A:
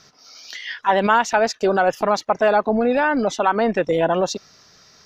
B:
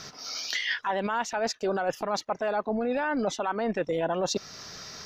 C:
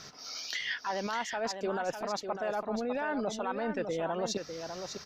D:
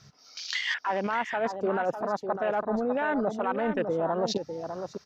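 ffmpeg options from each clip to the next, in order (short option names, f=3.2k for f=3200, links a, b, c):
-af "alimiter=limit=-16dB:level=0:latency=1:release=417,areverse,acompressor=threshold=-34dB:ratio=6,areverse,volume=8.5dB"
-af "aecho=1:1:601:0.422,volume=-5.5dB"
-af "afwtdn=0.00891,volume=5.5dB"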